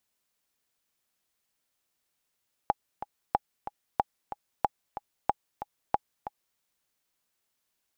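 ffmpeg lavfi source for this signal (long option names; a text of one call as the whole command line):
ffmpeg -f lavfi -i "aevalsrc='pow(10,(-9.5-12.5*gte(mod(t,2*60/185),60/185))/20)*sin(2*PI*826*mod(t,60/185))*exp(-6.91*mod(t,60/185)/0.03)':duration=3.89:sample_rate=44100" out.wav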